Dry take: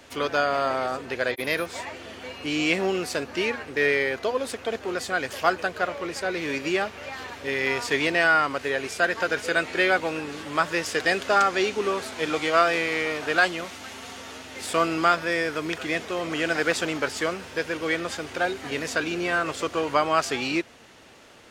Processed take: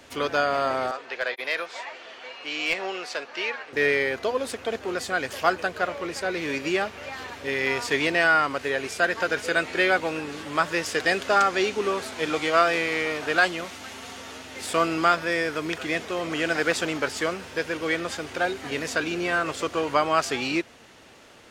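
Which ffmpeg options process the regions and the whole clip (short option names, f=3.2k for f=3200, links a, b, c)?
-filter_complex "[0:a]asettb=1/sr,asplit=3[a][b][c];[a]atrim=end=0.914[d];[b]atrim=start=0.91:end=3.73,asetpts=PTS-STARTPTS,afade=t=in:d=0.004:c=qsin,afade=t=out:st=2.816:d=0.004:c=qsin,highpass=f=310:p=1,acrossover=split=460 6100:gain=0.2 1 0.126[e][f][g];[e][f][g]amix=inputs=3:normalize=0,aeval=exprs='clip(val(0),-1,0.112)':c=same[h];[c]atrim=start=3.726[i];[d][h]acrossfade=d=0.004:c1=hsin:c2=qsin[j];[j][i]acrossfade=d=0.004:c1=qsin:c2=hsin"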